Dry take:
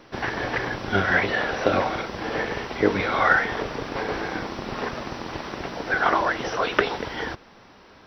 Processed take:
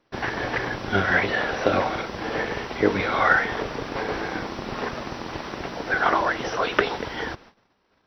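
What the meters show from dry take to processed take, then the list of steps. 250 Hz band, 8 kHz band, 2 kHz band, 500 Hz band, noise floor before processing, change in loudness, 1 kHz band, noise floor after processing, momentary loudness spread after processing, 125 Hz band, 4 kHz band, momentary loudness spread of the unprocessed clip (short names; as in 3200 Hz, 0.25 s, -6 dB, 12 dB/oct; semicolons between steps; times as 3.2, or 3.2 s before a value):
0.0 dB, n/a, 0.0 dB, 0.0 dB, -51 dBFS, 0.0 dB, 0.0 dB, -67 dBFS, 12 LU, 0.0 dB, 0.0 dB, 12 LU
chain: gate -47 dBFS, range -19 dB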